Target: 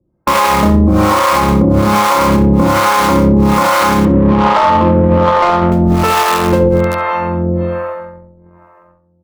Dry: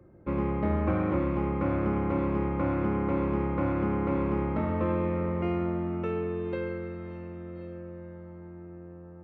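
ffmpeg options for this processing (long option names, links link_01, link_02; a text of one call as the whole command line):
ffmpeg -i in.wav -filter_complex "[0:a]agate=range=-36dB:threshold=-40dB:ratio=16:detection=peak,equalizer=frequency=100:width_type=o:width=0.67:gain=-7,equalizer=frequency=400:width_type=o:width=0.67:gain=-6,equalizer=frequency=1000:width_type=o:width=0.67:gain=9,asplit=2[link_01][link_02];[link_02]aeval=exprs='(mod(35.5*val(0)+1,2)-1)/35.5':channel_layout=same,volume=-8dB[link_03];[link_01][link_03]amix=inputs=2:normalize=0,acrossover=split=520[link_04][link_05];[link_04]aeval=exprs='val(0)*(1-1/2+1/2*cos(2*PI*1.2*n/s))':channel_layout=same[link_06];[link_05]aeval=exprs='val(0)*(1-1/2-1/2*cos(2*PI*1.2*n/s))':channel_layout=same[link_07];[link_06][link_07]amix=inputs=2:normalize=0,asettb=1/sr,asplit=3[link_08][link_09][link_10];[link_08]atrim=end=4.054[link_11];[link_09]atrim=start=4.05:end=5.72,asetpts=PTS-STARTPTS,afade=type=in:duration=0.004:curve=qsin,afade=type=out:start_time=1.666:duration=0.004:curve=qsin,adynamicsmooth=sensitivity=3.5:basefreq=560[link_12];[link_10]atrim=start=5.716[link_13];[link_11][link_12]acrossfade=duration=0.004:curve1=hsin:curve2=qsin[link_14];[link_14][link_13]acrossfade=duration=0.004:curve1=qsin:curve2=hsin,asplit=2[link_15][link_16];[link_16]adelay=67,lowpass=frequency=1600:poles=1,volume=-6dB,asplit=2[link_17][link_18];[link_18]adelay=67,lowpass=frequency=1600:poles=1,volume=0.33,asplit=2[link_19][link_20];[link_20]adelay=67,lowpass=frequency=1600:poles=1,volume=0.33,asplit=2[link_21][link_22];[link_22]adelay=67,lowpass=frequency=1600:poles=1,volume=0.33[link_23];[link_15][link_17][link_19][link_21][link_23]amix=inputs=5:normalize=0,alimiter=level_in=30.5dB:limit=-1dB:release=50:level=0:latency=1,volume=-1.5dB" out.wav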